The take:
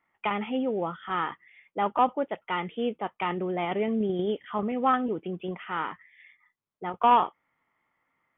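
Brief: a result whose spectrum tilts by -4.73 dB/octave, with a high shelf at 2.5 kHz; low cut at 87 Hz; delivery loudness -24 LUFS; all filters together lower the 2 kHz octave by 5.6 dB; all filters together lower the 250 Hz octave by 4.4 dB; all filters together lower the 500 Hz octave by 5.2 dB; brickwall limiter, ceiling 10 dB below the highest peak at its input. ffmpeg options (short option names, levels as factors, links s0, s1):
-af "highpass=87,equalizer=f=250:t=o:g=-4,equalizer=f=500:t=o:g=-5,equalizer=f=2000:t=o:g=-5.5,highshelf=f=2500:g=-3,volume=3.55,alimiter=limit=0.251:level=0:latency=1"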